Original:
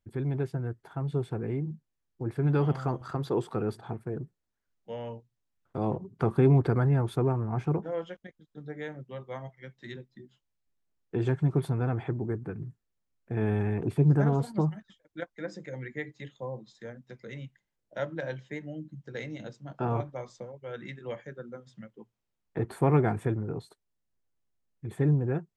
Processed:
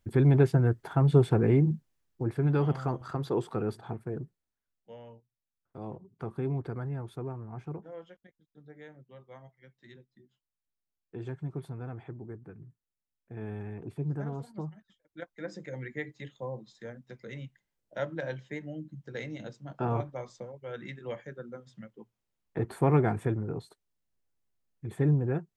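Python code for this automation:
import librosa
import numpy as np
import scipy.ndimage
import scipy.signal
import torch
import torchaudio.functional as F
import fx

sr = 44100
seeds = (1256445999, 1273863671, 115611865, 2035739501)

y = fx.gain(x, sr, db=fx.line((1.71, 9.0), (2.51, -1.0), (4.22, -1.0), (5.07, -11.0), (14.74, -11.0), (15.57, -0.5)))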